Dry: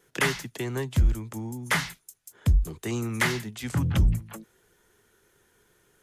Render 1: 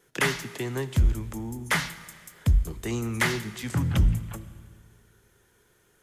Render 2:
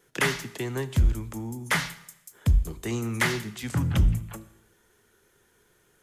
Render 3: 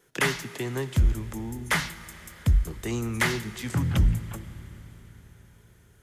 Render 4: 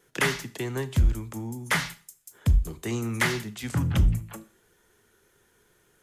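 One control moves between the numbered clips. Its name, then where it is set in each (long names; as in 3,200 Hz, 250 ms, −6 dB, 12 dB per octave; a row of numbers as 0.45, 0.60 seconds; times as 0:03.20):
four-comb reverb, RT60: 2.1, 0.84, 4.6, 0.4 seconds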